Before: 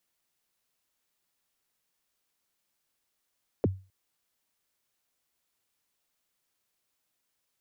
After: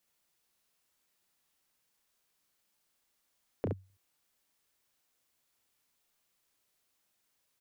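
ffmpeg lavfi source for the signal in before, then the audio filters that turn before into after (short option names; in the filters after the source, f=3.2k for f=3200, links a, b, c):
-f lavfi -i "aevalsrc='0.126*pow(10,-3*t/0.32)*sin(2*PI*(580*0.027/log(95/580)*(exp(log(95/580)*min(t,0.027)/0.027)-1)+95*max(t-0.027,0)))':d=0.26:s=44100"
-filter_complex "[0:a]acompressor=threshold=-38dB:ratio=2,asplit=2[a][b];[b]aecho=0:1:31|69:0.473|0.596[c];[a][c]amix=inputs=2:normalize=0"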